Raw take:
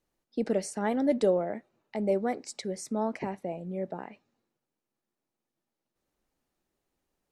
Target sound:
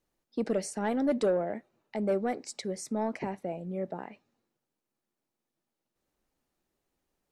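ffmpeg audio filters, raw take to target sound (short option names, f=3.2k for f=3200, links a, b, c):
-af "asoftclip=type=tanh:threshold=-19dB"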